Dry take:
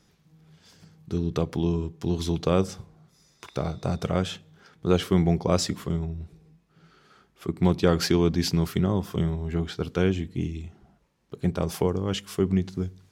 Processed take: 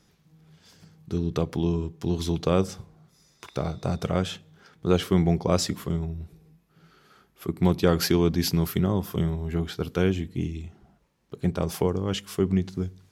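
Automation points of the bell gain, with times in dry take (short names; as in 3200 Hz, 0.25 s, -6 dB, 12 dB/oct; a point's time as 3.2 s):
bell 12000 Hz 0.3 oct
5.53 s +3.5 dB
6.05 s +13.5 dB
10.04 s +13.5 dB
10.63 s +3 dB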